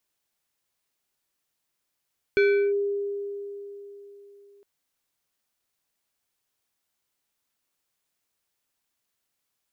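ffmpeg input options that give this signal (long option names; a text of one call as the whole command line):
ffmpeg -f lavfi -i "aevalsrc='0.168*pow(10,-3*t/3.65)*sin(2*PI*403*t+0.67*clip(1-t/0.36,0,1)*sin(2*PI*4.75*403*t))':duration=2.26:sample_rate=44100" out.wav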